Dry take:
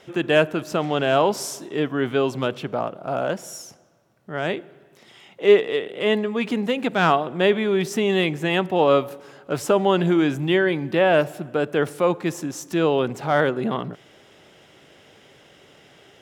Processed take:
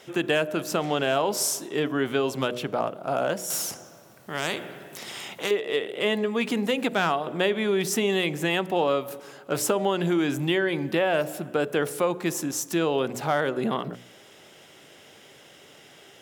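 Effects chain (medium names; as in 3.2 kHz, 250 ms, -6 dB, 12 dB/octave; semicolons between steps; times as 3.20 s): treble shelf 6.8 kHz +11 dB; de-hum 60.99 Hz, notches 11; compression 6:1, threshold -19 dBFS, peak gain reduction 10 dB; bass shelf 92 Hz -9 dB; 3.50–5.51 s: spectrum-flattening compressor 2:1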